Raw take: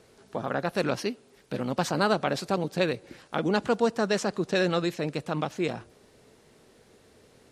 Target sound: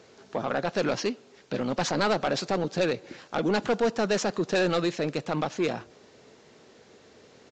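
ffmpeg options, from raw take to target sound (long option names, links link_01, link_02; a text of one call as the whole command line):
ffmpeg -i in.wav -af "highpass=frequency=180:poles=1,aresample=16000,asoftclip=type=tanh:threshold=-22.5dB,aresample=44100,volume=4.5dB" out.wav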